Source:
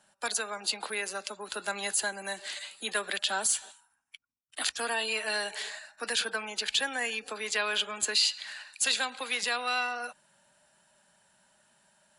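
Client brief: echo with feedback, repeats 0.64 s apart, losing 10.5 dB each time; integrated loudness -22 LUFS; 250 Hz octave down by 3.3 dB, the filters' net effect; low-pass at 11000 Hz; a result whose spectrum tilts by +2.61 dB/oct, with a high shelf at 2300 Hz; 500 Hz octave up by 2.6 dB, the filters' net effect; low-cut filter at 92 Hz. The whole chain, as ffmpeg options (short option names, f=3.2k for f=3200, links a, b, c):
-af "highpass=92,lowpass=11k,equalizer=f=250:t=o:g=-5,equalizer=f=500:t=o:g=4,highshelf=f=2.3k:g=7,aecho=1:1:640|1280|1920:0.299|0.0896|0.0269,volume=4dB"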